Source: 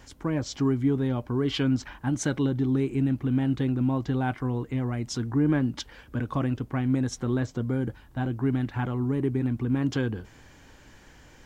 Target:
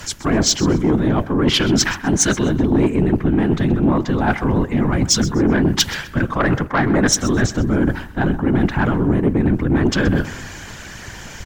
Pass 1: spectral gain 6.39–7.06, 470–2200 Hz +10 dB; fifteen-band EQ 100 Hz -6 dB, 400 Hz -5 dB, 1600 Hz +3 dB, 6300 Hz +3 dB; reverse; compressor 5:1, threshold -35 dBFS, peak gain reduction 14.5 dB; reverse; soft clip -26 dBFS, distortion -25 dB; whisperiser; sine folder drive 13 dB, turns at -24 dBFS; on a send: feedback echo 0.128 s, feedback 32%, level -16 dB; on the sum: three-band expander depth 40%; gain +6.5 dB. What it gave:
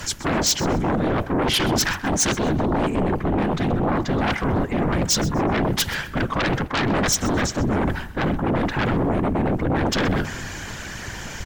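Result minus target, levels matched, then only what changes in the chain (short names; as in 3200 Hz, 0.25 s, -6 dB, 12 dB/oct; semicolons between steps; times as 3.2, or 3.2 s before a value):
sine folder: distortion +16 dB
change: sine folder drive 13 dB, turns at -16.5 dBFS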